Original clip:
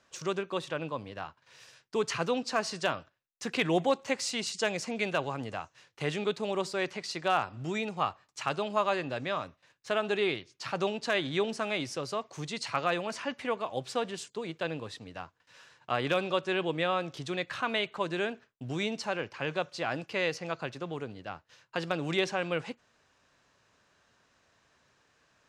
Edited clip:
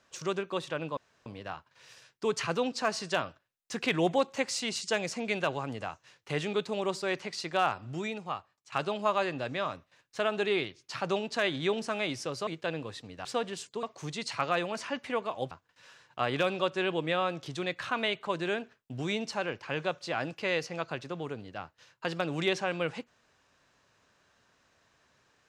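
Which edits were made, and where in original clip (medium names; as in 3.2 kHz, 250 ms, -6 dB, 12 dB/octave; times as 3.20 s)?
0.97 s: insert room tone 0.29 s
7.52–8.43 s: fade out, to -17 dB
12.18–13.86 s: swap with 14.44–15.22 s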